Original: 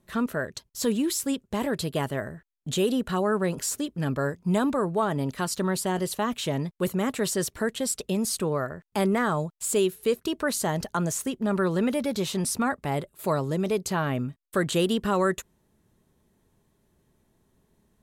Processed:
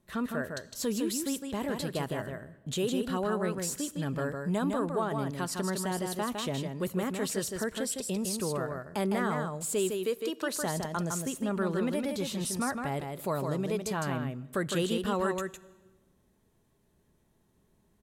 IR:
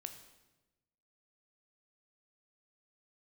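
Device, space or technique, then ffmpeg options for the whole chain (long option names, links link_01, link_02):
compressed reverb return: -filter_complex "[0:a]asplit=2[link_01][link_02];[1:a]atrim=start_sample=2205[link_03];[link_02][link_03]afir=irnorm=-1:irlink=0,acompressor=threshold=-37dB:ratio=6,volume=-0.5dB[link_04];[link_01][link_04]amix=inputs=2:normalize=0,asettb=1/sr,asplit=3[link_05][link_06][link_07];[link_05]atrim=end=10.044[link_08];[link_06]atrim=start=10.04:end=10.54,asetpts=PTS-STARTPTS,afade=type=in:duration=0.004:curve=qsin,afade=type=out:start_time=0.496:duration=0.004:curve=qsin,highpass=250[link_09];[link_07]atrim=start=10.536[link_10];[link_08][link_09]acrossfade=duration=0.004:curve1=hsin:curve2=qsin[link_11];[link_11][link_10]acrossfade=duration=0.004:curve1=qsin:curve2=hsin,aecho=1:1:158:0.562,volume=-7.5dB"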